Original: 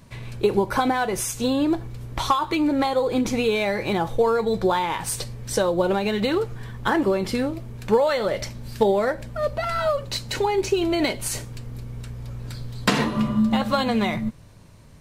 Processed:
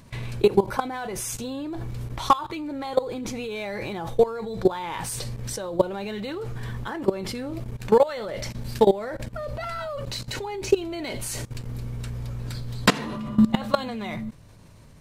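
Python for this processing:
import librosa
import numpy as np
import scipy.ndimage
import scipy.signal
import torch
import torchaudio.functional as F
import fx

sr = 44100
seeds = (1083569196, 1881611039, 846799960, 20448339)

y = fx.level_steps(x, sr, step_db=18)
y = F.gain(torch.from_numpy(y), 4.5).numpy()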